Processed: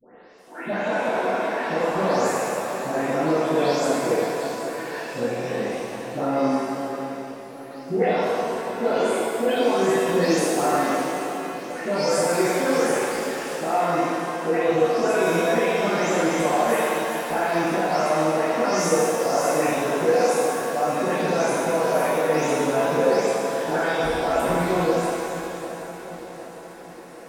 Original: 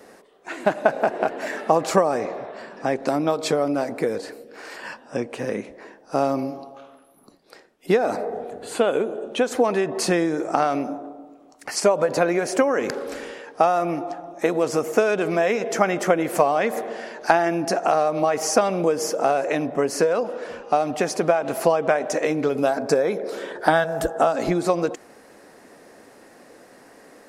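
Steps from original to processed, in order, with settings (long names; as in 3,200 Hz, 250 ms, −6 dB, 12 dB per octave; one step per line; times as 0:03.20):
every frequency bin delayed by itself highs late, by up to 383 ms
brickwall limiter −15 dBFS, peak gain reduction 8.5 dB
on a send: feedback echo with a long and a short gap by turns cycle 759 ms, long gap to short 3 to 1, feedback 51%, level −13 dB
on the sum: reverb with rising layers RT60 2 s, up +7 semitones, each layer −8 dB, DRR −8 dB
level −6.5 dB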